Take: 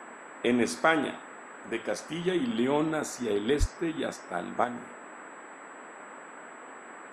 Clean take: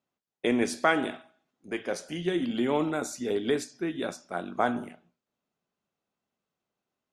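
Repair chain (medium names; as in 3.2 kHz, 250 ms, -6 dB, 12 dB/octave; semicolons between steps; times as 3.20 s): band-stop 7.8 kHz, Q 30; de-plosive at 3.59 s; noise print and reduce 30 dB; trim 0 dB, from 4.64 s +8 dB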